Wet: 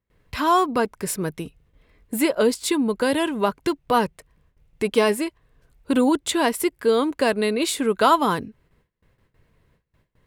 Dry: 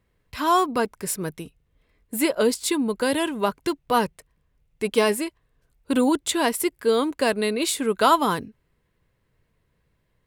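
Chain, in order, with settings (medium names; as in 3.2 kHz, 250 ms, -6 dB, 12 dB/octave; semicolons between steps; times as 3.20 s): gate with hold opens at -59 dBFS; treble shelf 4.4 kHz -5 dB; in parallel at +3 dB: compression, threshold -36 dBFS, peak gain reduction 21.5 dB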